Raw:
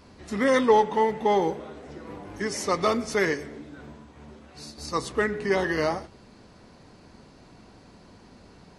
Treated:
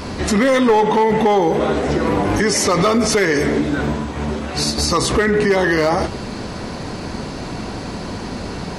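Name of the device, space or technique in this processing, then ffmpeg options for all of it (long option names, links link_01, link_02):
loud club master: -af "acompressor=threshold=-25dB:ratio=2,asoftclip=type=hard:threshold=-20dB,alimiter=level_in=31.5dB:limit=-1dB:release=50:level=0:latency=1,volume=-7.5dB"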